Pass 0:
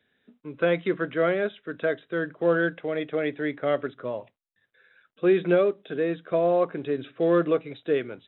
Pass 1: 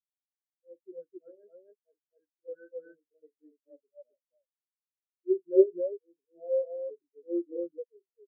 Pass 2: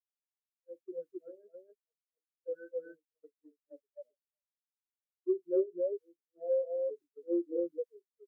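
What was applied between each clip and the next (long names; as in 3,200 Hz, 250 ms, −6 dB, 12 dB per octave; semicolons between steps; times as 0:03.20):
volume swells 103 ms; loudspeakers that aren't time-aligned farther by 15 metres −8 dB, 91 metres 0 dB; every bin expanded away from the loudest bin 4 to 1; level −3.5 dB
downward expander −52 dBFS; downward compressor 6 to 1, threshold −30 dBFS, peak gain reduction 15.5 dB; level +3 dB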